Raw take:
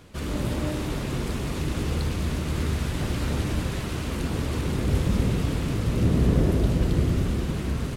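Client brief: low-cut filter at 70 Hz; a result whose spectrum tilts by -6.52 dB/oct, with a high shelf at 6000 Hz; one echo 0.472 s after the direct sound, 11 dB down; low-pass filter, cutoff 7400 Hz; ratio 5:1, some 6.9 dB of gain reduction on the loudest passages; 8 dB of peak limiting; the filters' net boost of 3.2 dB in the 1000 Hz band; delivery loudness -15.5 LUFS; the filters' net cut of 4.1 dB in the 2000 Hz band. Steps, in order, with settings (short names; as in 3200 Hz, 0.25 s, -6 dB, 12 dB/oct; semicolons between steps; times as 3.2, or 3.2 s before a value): HPF 70 Hz; LPF 7400 Hz; bell 1000 Hz +6 dB; bell 2000 Hz -8 dB; high shelf 6000 Hz +4.5 dB; compressor 5:1, threshold -25 dBFS; limiter -24.5 dBFS; echo 0.472 s -11 dB; gain +17.5 dB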